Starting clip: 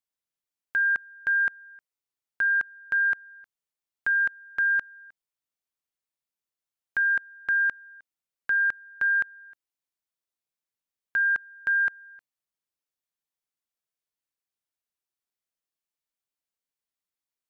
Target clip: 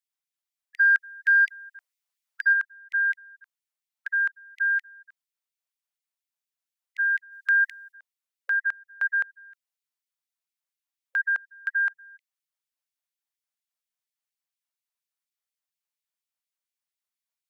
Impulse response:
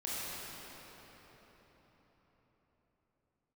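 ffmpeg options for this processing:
-filter_complex "[0:a]asplit=3[link_01][link_02][link_03];[link_01]afade=type=out:start_time=0.77:duration=0.02[link_04];[link_02]acontrast=34,afade=type=in:start_time=0.77:duration=0.02,afade=type=out:start_time=2.52:duration=0.02[link_05];[link_03]afade=type=in:start_time=2.52:duration=0.02[link_06];[link_04][link_05][link_06]amix=inputs=3:normalize=0,asplit=3[link_07][link_08][link_09];[link_07]afade=type=out:start_time=7.31:duration=0.02[link_10];[link_08]highshelf=frequency=2200:gain=10,afade=type=in:start_time=7.31:duration=0.02,afade=type=out:start_time=7.91:duration=0.02[link_11];[link_09]afade=type=in:start_time=7.91:duration=0.02[link_12];[link_10][link_11][link_12]amix=inputs=3:normalize=0,afftfilt=real='re*gte(b*sr/1024,480*pow(2000/480,0.5+0.5*sin(2*PI*4.2*pts/sr)))':imag='im*gte(b*sr/1024,480*pow(2000/480,0.5+0.5*sin(2*PI*4.2*pts/sr)))':win_size=1024:overlap=0.75"

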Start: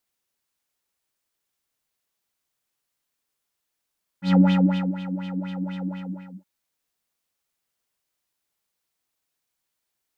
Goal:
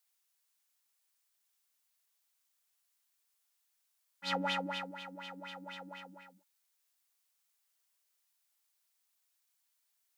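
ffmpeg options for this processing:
ffmpeg -i in.wav -af "highpass=710,highshelf=frequency=4200:gain=6.5,volume=-3.5dB" out.wav

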